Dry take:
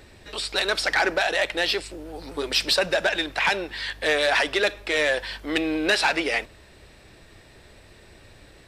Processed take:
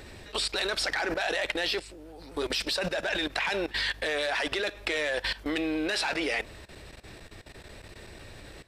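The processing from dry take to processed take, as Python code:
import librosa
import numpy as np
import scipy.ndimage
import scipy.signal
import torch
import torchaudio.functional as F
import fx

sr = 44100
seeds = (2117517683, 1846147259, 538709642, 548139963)

y = fx.level_steps(x, sr, step_db=17)
y = y * 10.0 ** (5.0 / 20.0)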